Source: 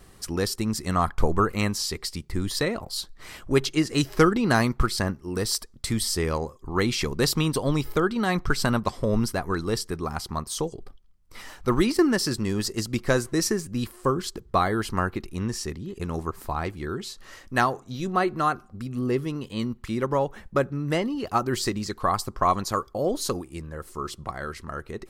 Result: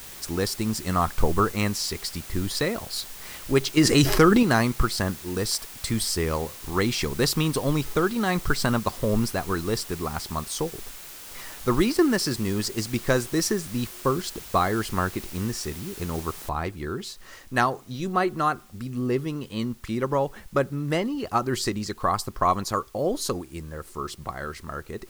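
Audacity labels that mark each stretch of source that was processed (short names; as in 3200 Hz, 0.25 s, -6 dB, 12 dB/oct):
3.770000	4.430000	fast leveller amount 70%
16.490000	16.490000	noise floor step -42 dB -57 dB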